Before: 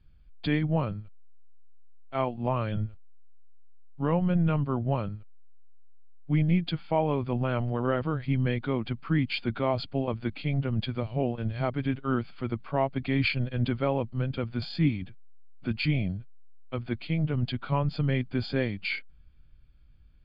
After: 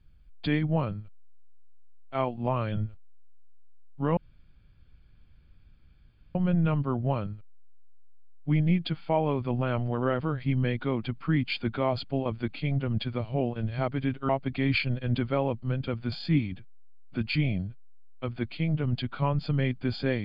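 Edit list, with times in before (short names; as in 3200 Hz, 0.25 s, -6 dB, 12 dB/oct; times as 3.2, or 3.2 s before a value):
4.17 insert room tone 2.18 s
12.11–12.79 cut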